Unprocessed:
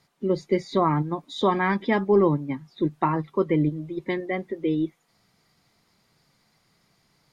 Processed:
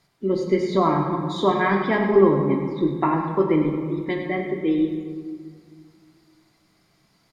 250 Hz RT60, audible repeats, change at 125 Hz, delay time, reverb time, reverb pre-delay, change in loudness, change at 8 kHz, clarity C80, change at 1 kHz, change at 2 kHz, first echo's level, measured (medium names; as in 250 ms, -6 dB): 2.6 s, 1, +1.0 dB, 102 ms, 1.9 s, 3 ms, +3.0 dB, no reading, 4.5 dB, +3.0 dB, +3.0 dB, -9.5 dB